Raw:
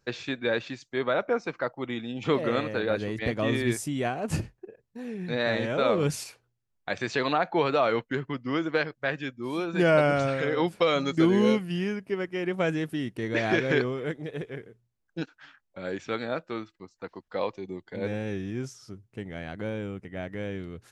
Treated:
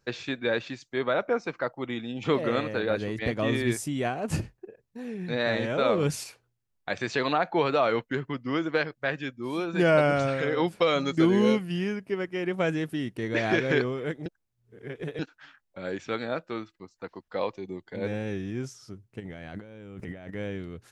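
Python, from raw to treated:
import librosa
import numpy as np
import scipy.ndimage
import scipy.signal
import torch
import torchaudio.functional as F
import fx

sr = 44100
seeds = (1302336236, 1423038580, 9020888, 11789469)

y = fx.over_compress(x, sr, threshold_db=-46.0, ratio=-1.0, at=(19.19, 20.29), fade=0.02)
y = fx.edit(y, sr, fx.reverse_span(start_s=14.26, length_s=0.93), tone=tone)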